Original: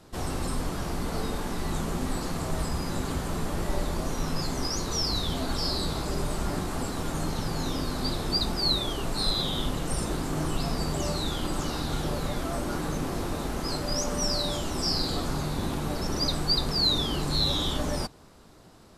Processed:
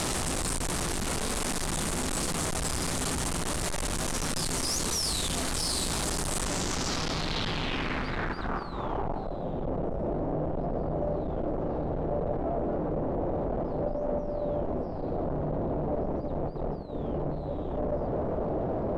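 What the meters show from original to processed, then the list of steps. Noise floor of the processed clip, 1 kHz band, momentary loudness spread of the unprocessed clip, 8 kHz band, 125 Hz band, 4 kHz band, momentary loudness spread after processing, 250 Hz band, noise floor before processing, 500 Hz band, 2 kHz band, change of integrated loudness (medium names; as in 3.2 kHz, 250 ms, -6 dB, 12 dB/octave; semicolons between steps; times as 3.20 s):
-34 dBFS, 0.0 dB, 7 LU, +4.0 dB, -2.5 dB, -6.5 dB, 5 LU, -1.5 dB, -52 dBFS, +3.0 dB, +1.5 dB, -1.5 dB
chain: one-bit comparator; low-pass sweep 9.1 kHz -> 610 Hz, 6.36–9.42 s; trim -2 dB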